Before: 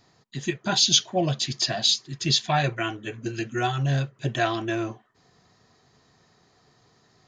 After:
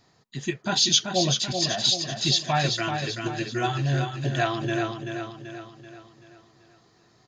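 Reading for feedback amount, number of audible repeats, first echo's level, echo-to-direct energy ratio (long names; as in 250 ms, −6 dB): 48%, 5, −6.0 dB, −5.0 dB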